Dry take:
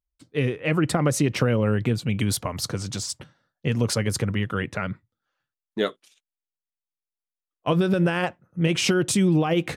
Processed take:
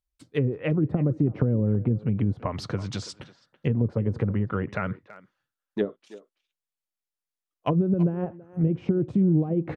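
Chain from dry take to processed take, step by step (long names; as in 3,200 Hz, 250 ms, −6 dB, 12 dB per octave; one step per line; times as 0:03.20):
treble cut that deepens with the level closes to 350 Hz, closed at −18.5 dBFS
far-end echo of a speakerphone 330 ms, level −16 dB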